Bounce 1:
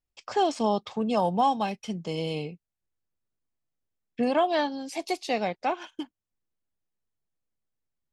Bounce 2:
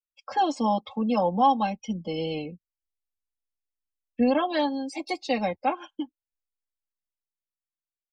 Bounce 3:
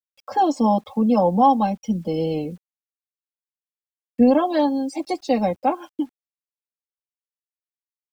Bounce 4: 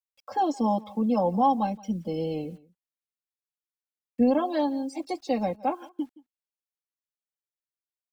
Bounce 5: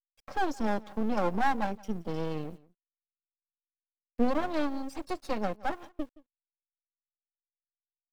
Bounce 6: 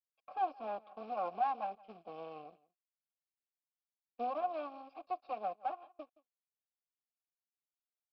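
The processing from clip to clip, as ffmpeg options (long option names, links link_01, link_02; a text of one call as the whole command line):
ffmpeg -i in.wav -filter_complex "[0:a]afftdn=noise_reduction=24:noise_floor=-43,aecho=1:1:3.7:0.96,acrossover=split=110|1300|5100[link_01][link_02][link_03][link_04];[link_01]dynaudnorm=framelen=300:gausssize=11:maxgain=15dB[link_05];[link_05][link_02][link_03][link_04]amix=inputs=4:normalize=0,volume=-2dB" out.wav
ffmpeg -i in.wav -af "equalizer=frequency=2600:width=0.57:gain=-12,acrusher=bits=10:mix=0:aa=0.000001,volume=8dB" out.wav
ffmpeg -i in.wav -af "aecho=1:1:171:0.0794,volume=-6.5dB" out.wav
ffmpeg -i in.wav -af "aeval=exprs='max(val(0),0)':channel_layout=same" out.wav
ffmpeg -i in.wav -filter_complex "[0:a]aresample=11025,acrusher=bits=5:mode=log:mix=0:aa=0.000001,aresample=44100,asplit=3[link_01][link_02][link_03];[link_01]bandpass=frequency=730:width_type=q:width=8,volume=0dB[link_04];[link_02]bandpass=frequency=1090:width_type=q:width=8,volume=-6dB[link_05];[link_03]bandpass=frequency=2440:width_type=q:width=8,volume=-9dB[link_06];[link_04][link_05][link_06]amix=inputs=3:normalize=0,volume=1.5dB" out.wav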